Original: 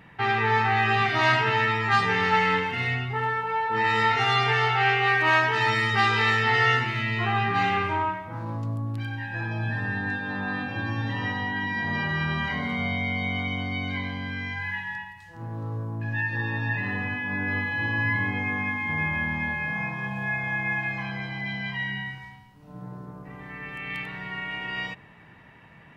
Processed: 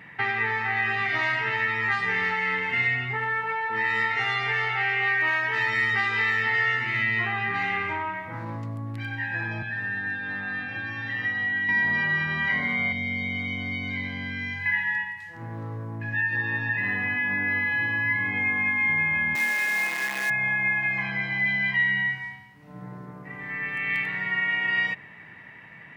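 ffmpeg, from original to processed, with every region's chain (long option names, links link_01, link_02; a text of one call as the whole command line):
ffmpeg -i in.wav -filter_complex "[0:a]asettb=1/sr,asplit=3[link_01][link_02][link_03];[link_01]atrim=end=9.624[link_04];[link_02]atrim=start=9.62:end=11.69,asetpts=PTS-STARTPTS,afade=type=in:duration=0.004:curve=qsin,afade=type=out:start_time=2.066:duration=0.004:curve=qsin,lowpass=frequency=3700:poles=1,bandreject=frequency=980:width=5.8,acrossover=split=120|1000|2100[link_05][link_06][link_07][link_08];[link_05]acompressor=threshold=-45dB:ratio=3[link_09];[link_06]acompressor=threshold=-44dB:ratio=3[link_10];[link_07]acompressor=threshold=-41dB:ratio=3[link_11];[link_08]acompressor=threshold=-43dB:ratio=3[link_12];[link_09][link_10][link_11][link_12]amix=inputs=4:normalize=0[link_13];[link_03]atrim=start=11.686[link_14];[link_04][link_13]acrossfade=duration=0.004:curve1=hsin:curve2=qsin[link_15];[link_15][link_14]acrossfade=duration=0.004:curve1=qsin:curve2=hsin,asettb=1/sr,asplit=3[link_16][link_17][link_18];[link_16]atrim=end=12.924[link_19];[link_17]atrim=start=12.92:end=14.66,asetpts=PTS-STARTPTS,afade=type=in:duration=0.004:curve=qsin,afade=type=out:start_time=1.736:duration=0.004:curve=qsin,acrossover=split=460|3000[link_20][link_21][link_22];[link_21]acompressor=threshold=-43dB:ratio=5:attack=3.2:release=140:knee=2.83:detection=peak[link_23];[link_20][link_23][link_22]amix=inputs=3:normalize=0,asplit=2[link_24][link_25];[link_25]adelay=34,volume=-13.5dB[link_26];[link_24][link_26]amix=inputs=2:normalize=0,atrim=end_sample=76734[link_27];[link_18]atrim=start=14.656[link_28];[link_19][link_27]acrossfade=duration=0.004:curve1=hsin:curve2=qsin[link_29];[link_29][link_28]acrossfade=duration=0.004:curve1=qsin:curve2=hsin,asettb=1/sr,asplit=3[link_30][link_31][link_32];[link_30]atrim=end=19.354[link_33];[link_31]atrim=start=19.35:end=20.3,asetpts=PTS-STARTPTS,afade=type=in:duration=0.004:curve=qsin,afade=type=out:start_time=0.946:duration=0.004:curve=qsin,acrusher=bits=6:dc=4:mix=0:aa=0.000001,highpass=frequency=260:width=0.5412,highpass=frequency=260:width=1.3066[link_34];[link_32]atrim=start=20.296[link_35];[link_33][link_34]acrossfade=duration=0.004:curve1=hsin:curve2=qsin[link_36];[link_36][link_35]acrossfade=duration=0.004:curve1=qsin:curve2=hsin,acompressor=threshold=-28dB:ratio=6,highpass=97,equalizer=frequency=2000:width=2.6:gain=11.5" out.wav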